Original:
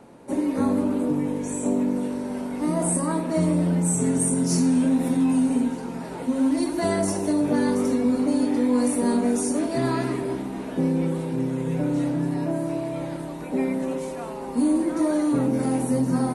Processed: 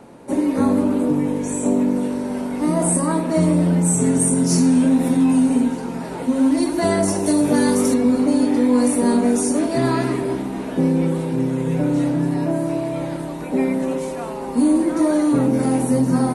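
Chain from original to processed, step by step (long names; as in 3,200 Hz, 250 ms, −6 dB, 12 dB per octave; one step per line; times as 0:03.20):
0:07.26–0:07.94: high-shelf EQ 5,400 Hz +11.5 dB
level +5 dB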